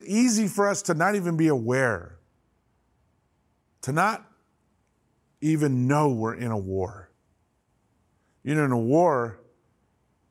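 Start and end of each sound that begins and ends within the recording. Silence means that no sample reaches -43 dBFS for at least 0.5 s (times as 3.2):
3.83–4.22
5.42–7.04
8.45–9.4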